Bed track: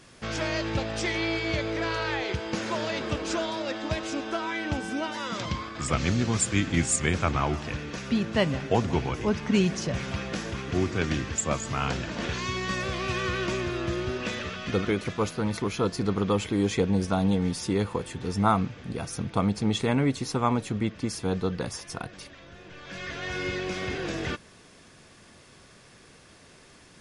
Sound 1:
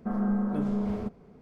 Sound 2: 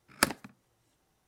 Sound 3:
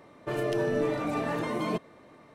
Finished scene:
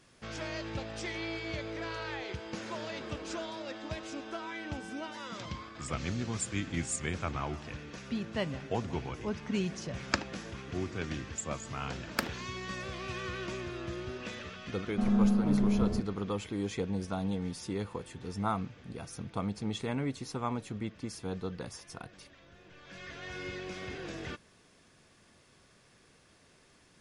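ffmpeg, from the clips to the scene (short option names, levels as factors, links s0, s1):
-filter_complex "[2:a]asplit=2[s0][s1];[0:a]volume=0.335[s2];[s0]aresample=16000,aresample=44100[s3];[s1]equalizer=f=10000:t=o:w=0.52:g=-13[s4];[1:a]lowshelf=f=220:g=11[s5];[s3]atrim=end=1.27,asetpts=PTS-STARTPTS,volume=0.631,afade=t=in:d=0.004:c=hsin,afade=t=out:st=1.266:d=0.004:c=hsin,adelay=9910[s6];[s4]atrim=end=1.27,asetpts=PTS-STARTPTS,volume=0.501,afade=t=in:d=0.004:c=hsin,afade=t=out:st=1.266:d=0.004:c=hsin,adelay=11960[s7];[s5]atrim=end=1.41,asetpts=PTS-STARTPTS,volume=0.596,afade=t=in:d=0.004:c=hsin,afade=t=out:st=1.406:d=0.004:c=hsin,adelay=657972S[s8];[s2][s6][s7][s8]amix=inputs=4:normalize=0"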